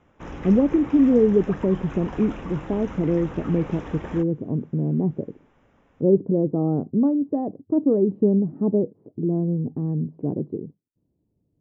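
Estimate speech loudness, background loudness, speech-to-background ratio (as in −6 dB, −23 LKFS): −23.0 LKFS, −37.5 LKFS, 14.5 dB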